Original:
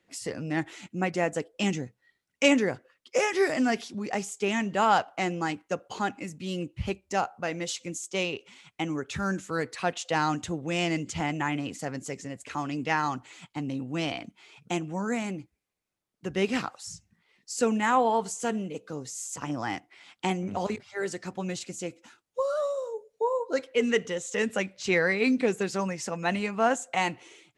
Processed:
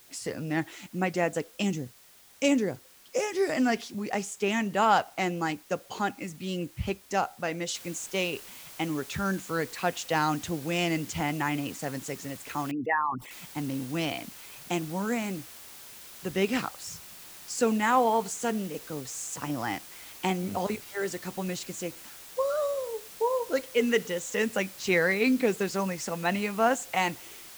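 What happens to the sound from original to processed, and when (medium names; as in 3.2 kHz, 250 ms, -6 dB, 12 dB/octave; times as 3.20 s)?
1.62–3.49 s: peaking EQ 1.6 kHz -9 dB 2.5 oct
7.75 s: noise floor step -56 dB -47 dB
12.71–13.31 s: resonances exaggerated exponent 3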